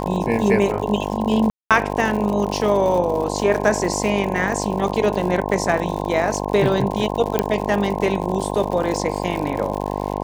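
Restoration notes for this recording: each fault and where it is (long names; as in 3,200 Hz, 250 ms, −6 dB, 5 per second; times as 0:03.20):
mains buzz 50 Hz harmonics 21 −25 dBFS
surface crackle 98 per second −26 dBFS
0:01.50–0:01.71: drop-out 207 ms
0:07.39: click −4 dBFS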